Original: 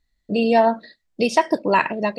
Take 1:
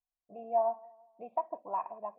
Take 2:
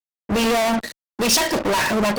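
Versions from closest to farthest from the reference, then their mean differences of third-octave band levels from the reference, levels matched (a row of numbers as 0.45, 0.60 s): 1, 2; 10.0, 14.5 dB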